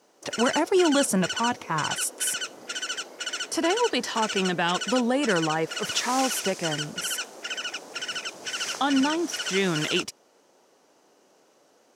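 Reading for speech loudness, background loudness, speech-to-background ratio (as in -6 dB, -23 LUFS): -26.0 LUFS, -31.0 LUFS, 5.0 dB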